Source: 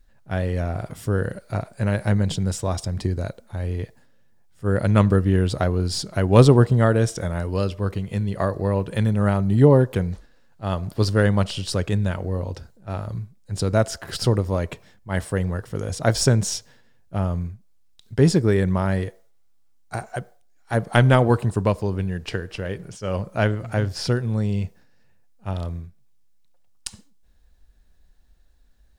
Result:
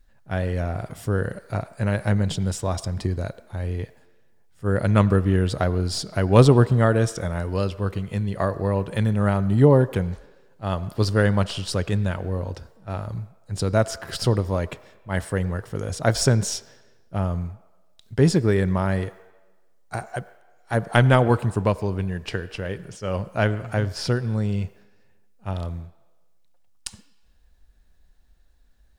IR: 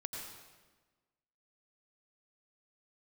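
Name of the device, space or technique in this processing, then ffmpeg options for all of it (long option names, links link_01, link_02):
filtered reverb send: -filter_complex "[0:a]asplit=2[link_01][link_02];[link_02]highpass=500,lowpass=3700[link_03];[1:a]atrim=start_sample=2205[link_04];[link_03][link_04]afir=irnorm=-1:irlink=0,volume=-13dB[link_05];[link_01][link_05]amix=inputs=2:normalize=0,volume=-1dB"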